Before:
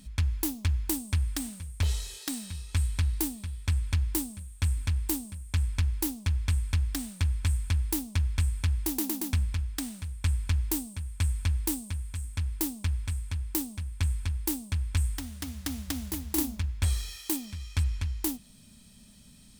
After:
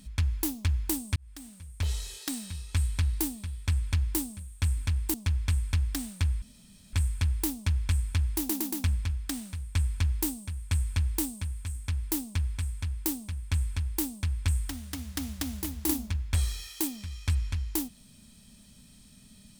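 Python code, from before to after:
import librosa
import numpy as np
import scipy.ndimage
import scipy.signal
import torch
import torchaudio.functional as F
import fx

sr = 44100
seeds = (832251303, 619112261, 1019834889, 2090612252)

y = fx.edit(x, sr, fx.fade_in_span(start_s=1.16, length_s=0.93),
    fx.cut(start_s=5.14, length_s=1.0),
    fx.insert_room_tone(at_s=7.42, length_s=0.51), tone=tone)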